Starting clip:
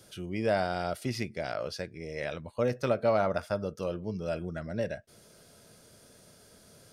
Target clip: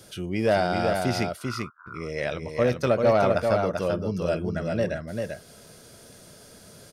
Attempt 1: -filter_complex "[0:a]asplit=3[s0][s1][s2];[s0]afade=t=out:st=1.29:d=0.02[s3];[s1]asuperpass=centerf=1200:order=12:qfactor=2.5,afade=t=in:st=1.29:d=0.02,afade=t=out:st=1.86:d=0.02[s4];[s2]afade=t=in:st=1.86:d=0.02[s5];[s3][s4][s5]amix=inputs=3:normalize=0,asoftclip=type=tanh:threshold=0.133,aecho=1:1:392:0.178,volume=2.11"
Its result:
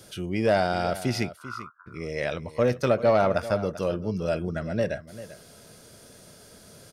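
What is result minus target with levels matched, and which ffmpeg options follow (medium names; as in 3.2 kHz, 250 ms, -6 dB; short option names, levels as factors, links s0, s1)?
echo-to-direct -10.5 dB
-filter_complex "[0:a]asplit=3[s0][s1][s2];[s0]afade=t=out:st=1.29:d=0.02[s3];[s1]asuperpass=centerf=1200:order=12:qfactor=2.5,afade=t=in:st=1.29:d=0.02,afade=t=out:st=1.86:d=0.02[s4];[s2]afade=t=in:st=1.86:d=0.02[s5];[s3][s4][s5]amix=inputs=3:normalize=0,asoftclip=type=tanh:threshold=0.133,aecho=1:1:392:0.596,volume=2.11"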